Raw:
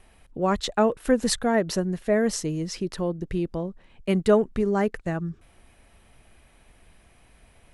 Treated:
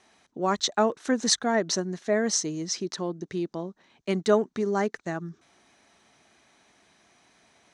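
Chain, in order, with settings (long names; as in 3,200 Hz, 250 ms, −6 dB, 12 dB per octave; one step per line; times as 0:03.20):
loudspeaker in its box 240–8,000 Hz, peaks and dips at 510 Hz −7 dB, 2,700 Hz −5 dB, 4,000 Hz +5 dB, 6,100 Hz +10 dB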